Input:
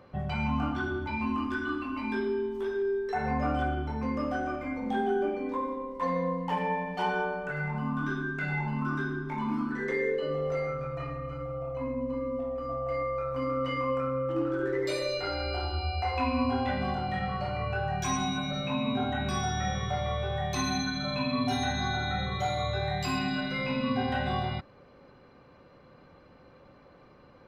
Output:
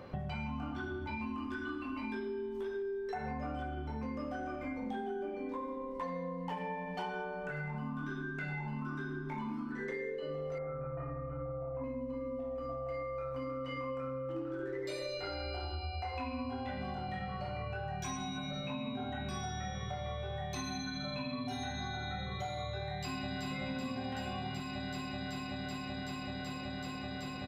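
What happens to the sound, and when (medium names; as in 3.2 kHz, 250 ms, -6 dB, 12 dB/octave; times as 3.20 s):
10.58–11.84 s: low-pass 1.7 kHz 24 dB/octave
22.85–23.49 s: echo throw 380 ms, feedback 85%, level -1 dB
whole clip: peaking EQ 1.2 kHz -2.5 dB; compression, threshold -43 dBFS; trim +5.5 dB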